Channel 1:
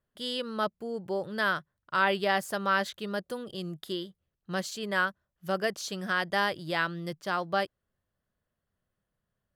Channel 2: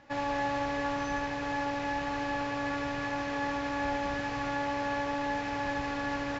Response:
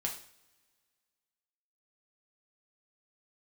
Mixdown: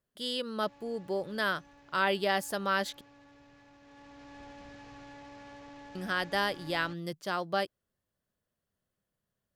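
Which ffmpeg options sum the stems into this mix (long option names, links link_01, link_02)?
-filter_complex "[0:a]lowshelf=frequency=140:gain=-9,volume=1.5dB,asplit=3[link_01][link_02][link_03];[link_01]atrim=end=3.01,asetpts=PTS-STARTPTS,afade=type=out:start_time=3.006:duration=0.004:curve=hsin[link_04];[link_02]atrim=start=3.01:end=5.95,asetpts=PTS-STARTPTS,volume=0[link_05];[link_03]atrim=start=5.95,asetpts=PTS-STARTPTS,afade=type=in:duration=0.004:curve=hsin[link_06];[link_04][link_05][link_06]concat=n=3:v=0:a=1[link_07];[1:a]asoftclip=type=tanh:threshold=-31dB,adelay=550,volume=-11dB,afade=type=in:start_time=3.8:duration=0.62:silence=0.354813[link_08];[link_07][link_08]amix=inputs=2:normalize=0,equalizer=frequency=1300:width_type=o:width=2.3:gain=-5"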